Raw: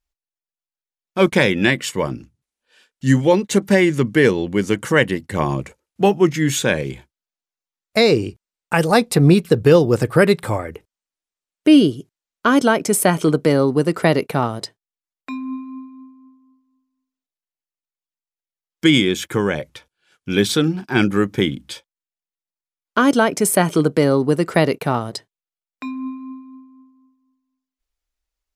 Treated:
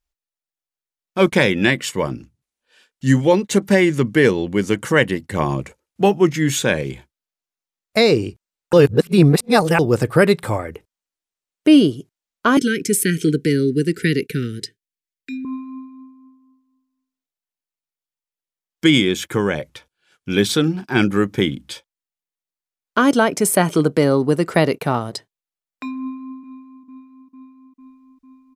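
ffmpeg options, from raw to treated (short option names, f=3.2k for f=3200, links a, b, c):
-filter_complex "[0:a]asettb=1/sr,asplit=3[a][b][c];[a]atrim=end=12.574[d];[b]atrim=start=12.57:end=15.45,asetpts=PTS-STARTPTS,afade=t=in:d=0.004:c=qsin,afade=t=out:st=2.876:d=0.004:c=qsin,asuperstop=centerf=830:order=12:qfactor=0.76[e];[c]atrim=start=15.446[f];[d][e]acrossfade=d=0.004:c1=hsin:c2=qsin[g];[g][f]acrossfade=d=0.004:c1=qsin:c2=hsin,asplit=2[h][i];[i]afade=t=in:st=25.98:d=0.01,afade=t=out:st=26.38:d=0.01,aecho=0:1:450|900|1350|1800|2250|2700|3150|3600|4050|4500|4950|5400:0.334965|0.251224|0.188418|0.141314|0.105985|0.0794889|0.0596167|0.0447125|0.0335344|0.0251508|0.0188631|0.0141473[j];[h][j]amix=inputs=2:normalize=0,asplit=3[k][l][m];[k]atrim=end=8.732[n];[l]atrim=start=8.728:end=9.792,asetpts=PTS-STARTPTS,areverse[o];[m]atrim=start=9.788[p];[n][o]acrossfade=d=0.004:c1=hsin:c2=hsin[q];[q][p]acrossfade=d=0.004:c1=hsin:c2=hsin"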